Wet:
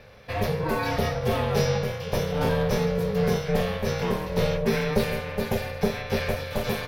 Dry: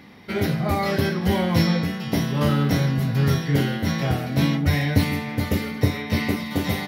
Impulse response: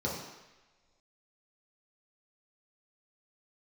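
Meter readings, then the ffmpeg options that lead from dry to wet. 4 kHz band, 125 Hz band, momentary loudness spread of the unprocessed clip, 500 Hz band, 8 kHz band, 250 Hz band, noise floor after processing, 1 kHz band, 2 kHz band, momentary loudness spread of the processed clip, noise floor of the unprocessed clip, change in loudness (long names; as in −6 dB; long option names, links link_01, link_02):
−4.0 dB, −7.0 dB, 5 LU, +3.0 dB, −1.5 dB, −7.0 dB, −36 dBFS, −1.0 dB, −3.5 dB, 5 LU, −32 dBFS, −3.5 dB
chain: -af "aeval=exprs='val(0)*sin(2*PI*310*n/s)':channel_layout=same,asoftclip=type=tanh:threshold=-11dB"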